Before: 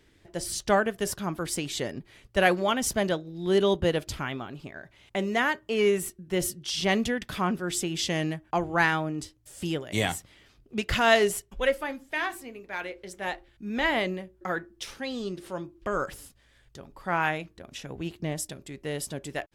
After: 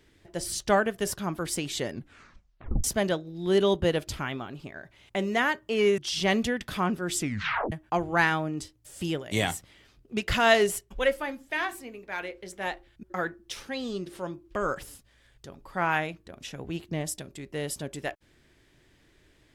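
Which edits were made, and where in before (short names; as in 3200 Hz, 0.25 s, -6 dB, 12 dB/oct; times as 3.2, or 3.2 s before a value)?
1.91 tape stop 0.93 s
5.98–6.59 cut
7.78 tape stop 0.55 s
13.64–14.34 cut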